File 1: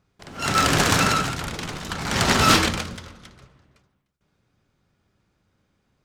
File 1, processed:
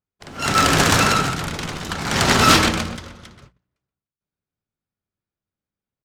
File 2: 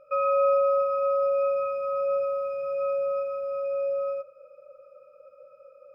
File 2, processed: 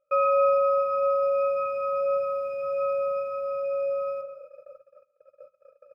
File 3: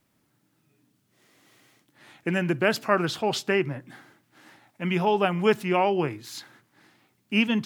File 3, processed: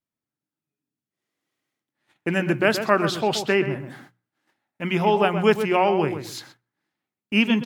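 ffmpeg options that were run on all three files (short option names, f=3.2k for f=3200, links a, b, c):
-filter_complex "[0:a]asplit=2[a][b];[b]adelay=127,lowpass=f=2k:p=1,volume=-8.5dB,asplit=2[c][d];[d]adelay=127,lowpass=f=2k:p=1,volume=0.22,asplit=2[e][f];[f]adelay=127,lowpass=f=2k:p=1,volume=0.22[g];[c][e][g]amix=inputs=3:normalize=0[h];[a][h]amix=inputs=2:normalize=0,agate=range=-25dB:threshold=-48dB:ratio=16:detection=peak,bandreject=f=60:t=h:w=6,bandreject=f=120:t=h:w=6,bandreject=f=180:t=h:w=6,volume=3dB"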